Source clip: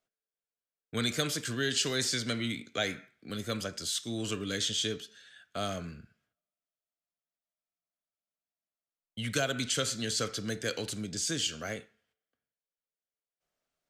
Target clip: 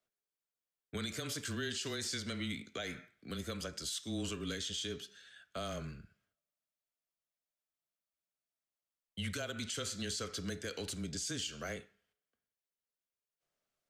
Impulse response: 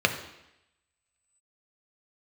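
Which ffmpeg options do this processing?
-af "alimiter=level_in=2.5dB:limit=-24dB:level=0:latency=1:release=165,volume=-2.5dB,afreqshift=-18,volume=-2.5dB"

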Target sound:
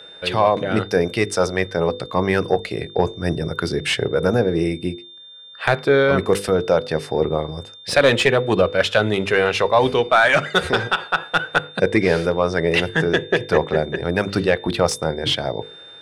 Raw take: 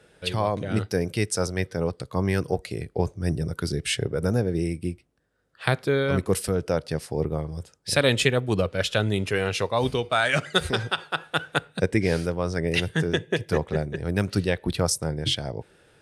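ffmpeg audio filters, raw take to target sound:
-filter_complex "[0:a]asplit=2[a][b];[b]highpass=f=720:p=1,volume=17dB,asoftclip=type=tanh:threshold=-3dB[c];[a][c]amix=inputs=2:normalize=0,lowpass=f=1.3k:p=1,volume=-6dB,aeval=exprs='val(0)+0.00708*sin(2*PI*3600*n/s)':c=same,bandreject=f=50:t=h:w=6,bandreject=f=100:t=h:w=6,bandreject=f=150:t=h:w=6,bandreject=f=200:t=h:w=6,bandreject=f=250:t=h:w=6,bandreject=f=300:t=h:w=6,bandreject=f=350:t=h:w=6,bandreject=f=400:t=h:w=6,bandreject=f=450:t=h:w=6,bandreject=f=500:t=h:w=6,volume=3.5dB"

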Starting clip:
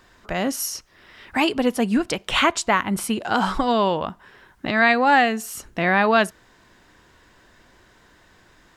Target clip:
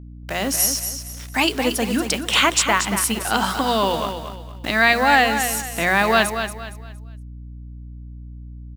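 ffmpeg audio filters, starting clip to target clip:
-filter_complex "[0:a]highpass=140,highshelf=f=3.1k:g=11,bandreject=f=60:t=h:w=6,bandreject=f=120:t=h:w=6,bandreject=f=180:t=h:w=6,bandreject=f=240:t=h:w=6,bandreject=f=300:t=h:w=6,bandreject=f=360:t=h:w=6,bandreject=f=420:t=h:w=6,acrusher=bits=5:mix=0:aa=0.000001,aeval=exprs='val(0)+0.0158*(sin(2*PI*60*n/s)+sin(2*PI*2*60*n/s)/2+sin(2*PI*3*60*n/s)/3+sin(2*PI*4*60*n/s)/4+sin(2*PI*5*60*n/s)/5)':c=same,asplit=2[a][b];[b]aecho=0:1:232|464|696|928:0.376|0.12|0.0385|0.0123[c];[a][c]amix=inputs=2:normalize=0,volume=-1dB"

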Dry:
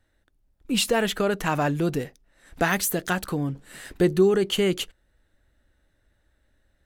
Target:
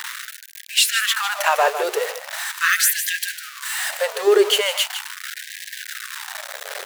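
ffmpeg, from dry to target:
-af "aeval=exprs='val(0)+0.5*0.0422*sgn(val(0))':c=same,aecho=1:1:153:0.335,afftfilt=real='re*gte(b*sr/1024,380*pow(1600/380,0.5+0.5*sin(2*PI*0.4*pts/sr)))':imag='im*gte(b*sr/1024,380*pow(1600/380,0.5+0.5*sin(2*PI*0.4*pts/sr)))':win_size=1024:overlap=0.75,volume=6.5dB"

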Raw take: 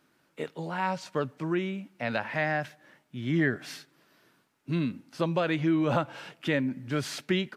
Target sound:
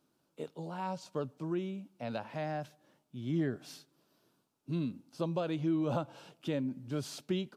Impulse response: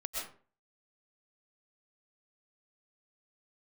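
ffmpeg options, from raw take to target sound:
-af "equalizer=f=1.9k:w=1.5:g=-14.5,volume=-5.5dB"

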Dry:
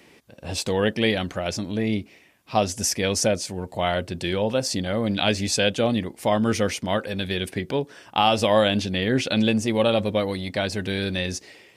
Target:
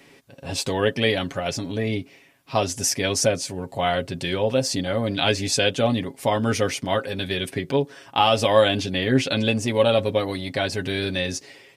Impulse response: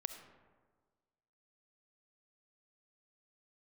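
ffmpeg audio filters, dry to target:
-af "aecho=1:1:7.3:0.59"

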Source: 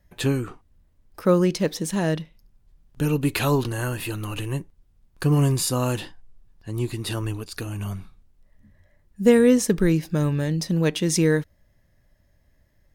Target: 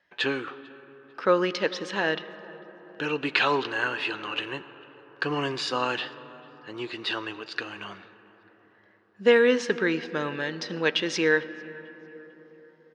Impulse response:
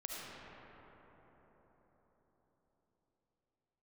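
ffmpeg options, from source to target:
-filter_complex "[0:a]highpass=500,equalizer=f=630:t=q:w=4:g=-5,equalizer=f=1.6k:t=q:w=4:g=6,equalizer=f=2.9k:t=q:w=4:g=4,lowpass=f=4.5k:w=0.5412,lowpass=f=4.5k:w=1.3066,asplit=2[a][b];[b]adelay=447,lowpass=f=2.8k:p=1,volume=-24dB,asplit=2[c][d];[d]adelay=447,lowpass=f=2.8k:p=1,volume=0.46,asplit=2[e][f];[f]adelay=447,lowpass=f=2.8k:p=1,volume=0.46[g];[a][c][e][g]amix=inputs=4:normalize=0,asplit=2[h][i];[1:a]atrim=start_sample=2205,adelay=15[j];[i][j]afir=irnorm=-1:irlink=0,volume=-14.5dB[k];[h][k]amix=inputs=2:normalize=0,volume=2.5dB"

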